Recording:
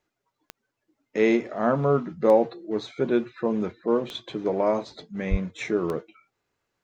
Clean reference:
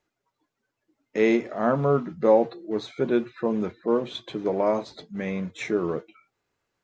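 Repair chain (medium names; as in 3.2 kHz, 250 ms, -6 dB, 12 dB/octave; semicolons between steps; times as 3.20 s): de-click; de-plosive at 5.30 s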